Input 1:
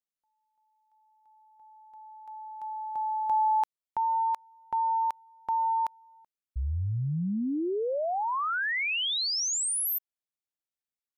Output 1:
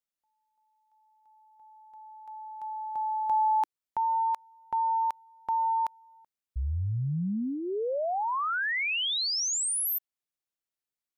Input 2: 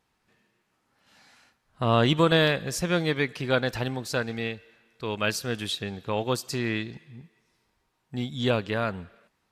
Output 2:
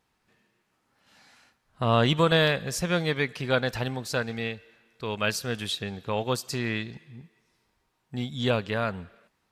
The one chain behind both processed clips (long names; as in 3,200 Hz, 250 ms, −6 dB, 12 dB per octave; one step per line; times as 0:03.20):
dynamic equaliser 320 Hz, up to −5 dB, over −44 dBFS, Q 3.5